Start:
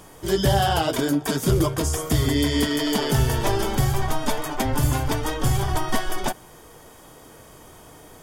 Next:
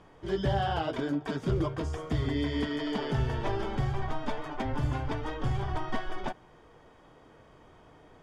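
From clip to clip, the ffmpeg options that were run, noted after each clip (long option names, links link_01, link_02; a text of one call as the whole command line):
ffmpeg -i in.wav -af "lowpass=2900,volume=-8.5dB" out.wav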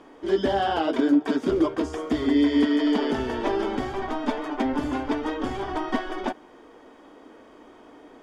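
ffmpeg -i in.wav -af "lowshelf=frequency=190:width_type=q:width=3:gain=-11,volume=5.5dB" out.wav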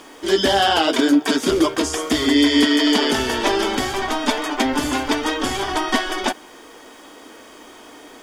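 ffmpeg -i in.wav -af "crystalizer=i=8.5:c=0,volume=3.5dB" out.wav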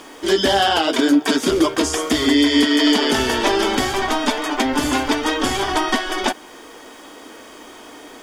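ffmpeg -i in.wav -af "alimiter=limit=-8.5dB:level=0:latency=1:release=264,volume=2.5dB" out.wav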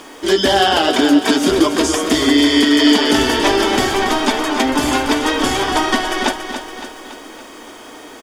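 ffmpeg -i in.wav -af "aecho=1:1:282|564|846|1128|1410|1692:0.355|0.195|0.107|0.059|0.0325|0.0179,volume=2.5dB" out.wav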